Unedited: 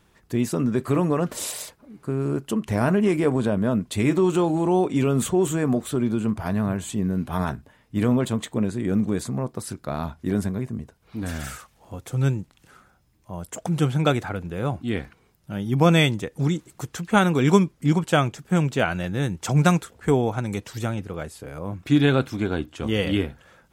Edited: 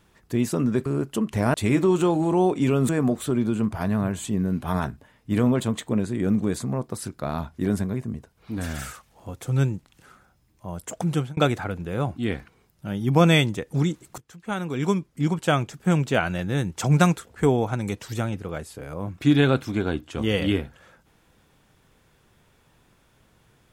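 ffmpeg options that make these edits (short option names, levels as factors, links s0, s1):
-filter_complex "[0:a]asplit=6[s0][s1][s2][s3][s4][s5];[s0]atrim=end=0.862[s6];[s1]atrim=start=2.208:end=2.892[s7];[s2]atrim=start=3.878:end=5.232[s8];[s3]atrim=start=5.538:end=14.02,asetpts=PTS-STARTPTS,afade=t=out:st=8.102:d=0.38:c=qsin[s9];[s4]atrim=start=14.02:end=16.83,asetpts=PTS-STARTPTS,afade=t=in:d=0.004:c=hsin,afade=t=out:st=2.806:d=0.004:c=hsin:silence=0.0944061[s10];[s5]atrim=start=16.83,asetpts=PTS-STARTPTS,afade=t=in:d=1.67:silence=0.0944061[s11];[s6][s7]acrossfade=d=0.004:c1=hsin:c2=hsin[s12];[s12][s8]acrossfade=d=0.004:c1=hsin:c2=hsin[s13];[s9][s10][s11]concat=n=3:v=0:a=1[s14];[s13][s14]acrossfade=d=0.004:c1=hsin:c2=hsin"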